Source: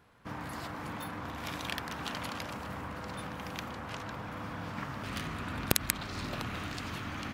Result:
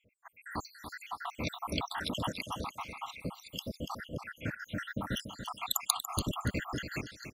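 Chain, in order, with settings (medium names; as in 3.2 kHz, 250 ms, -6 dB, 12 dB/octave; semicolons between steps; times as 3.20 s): random holes in the spectrogram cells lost 85%; level rider gain up to 8.5 dB; feedback delay 287 ms, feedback 23%, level -9 dB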